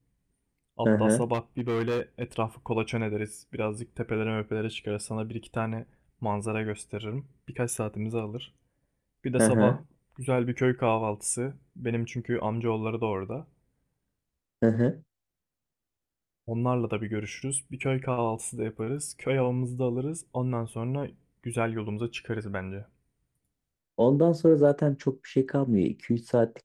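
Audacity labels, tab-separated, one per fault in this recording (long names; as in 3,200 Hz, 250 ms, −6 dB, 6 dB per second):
1.330000	2.240000	clipping −24 dBFS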